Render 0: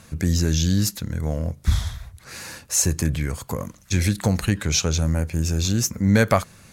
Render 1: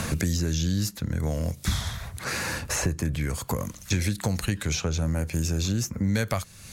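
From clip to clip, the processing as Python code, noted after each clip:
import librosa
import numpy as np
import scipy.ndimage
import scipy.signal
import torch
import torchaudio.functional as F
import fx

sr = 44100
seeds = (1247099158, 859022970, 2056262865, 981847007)

y = fx.band_squash(x, sr, depth_pct=100)
y = F.gain(torch.from_numpy(y), -5.5).numpy()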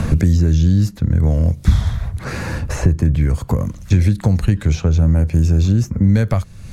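y = fx.tilt_eq(x, sr, slope=-3.0)
y = F.gain(torch.from_numpy(y), 3.5).numpy()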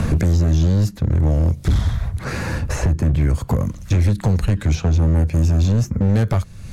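y = np.clip(10.0 ** (12.0 / 20.0) * x, -1.0, 1.0) / 10.0 ** (12.0 / 20.0)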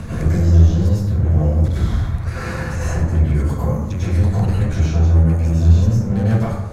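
y = fx.rev_plate(x, sr, seeds[0], rt60_s=1.1, hf_ratio=0.45, predelay_ms=85, drr_db=-9.0)
y = F.gain(torch.from_numpy(y), -9.5).numpy()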